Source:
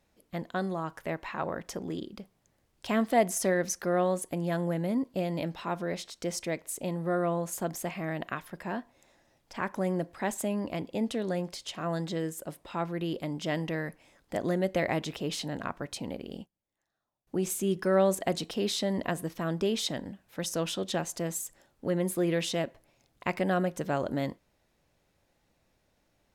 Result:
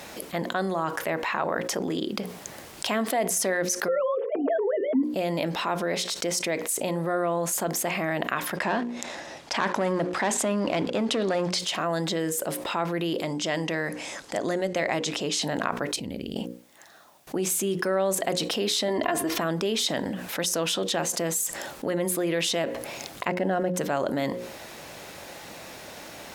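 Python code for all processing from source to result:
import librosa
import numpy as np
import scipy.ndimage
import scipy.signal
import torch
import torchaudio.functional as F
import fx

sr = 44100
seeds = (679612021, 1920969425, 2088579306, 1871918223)

y = fx.chain(x, sr, fx.sine_speech(),
    fx.tilt_shelf(db=9.0, hz=1300.0),
    fx.comb(ms=4.5, depth=0.73), at=(3.88, 5.03))
y = fx.chain(y, sr, fx.leveller(passes=2),
    fx.lowpass(hz=7100.0, slope=12), at=(8.56, 11.59))
y = fx.chain(y, sr, fx.lowpass(hz=10000.0, slope=12),
    fx.peak_eq(hz=6700.0, db=6.5, octaves=0.97),
    fx.upward_expand(threshold_db=-39.0, expansion=1.5), at=(13.22, 15.42))
y = fx.chain(y, sr, fx.tone_stack(knobs='10-0-1'),
    fx.env_flatten(amount_pct=50), at=(15.96, 16.36))
y = fx.chain(y, sr, fx.peak_eq(hz=11000.0, db=-7.5, octaves=1.9),
    fx.comb(ms=2.9, depth=0.73),
    fx.env_flatten(amount_pct=50), at=(18.88, 19.4))
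y = fx.chain(y, sr, fx.law_mismatch(coded='A'),
    fx.tilt_eq(slope=-3.0),
    fx.notch_comb(f0_hz=1200.0), at=(23.28, 23.74))
y = fx.highpass(y, sr, hz=370.0, slope=6)
y = fx.hum_notches(y, sr, base_hz=60, count=9)
y = fx.env_flatten(y, sr, amount_pct=70)
y = y * 10.0 ** (-7.0 / 20.0)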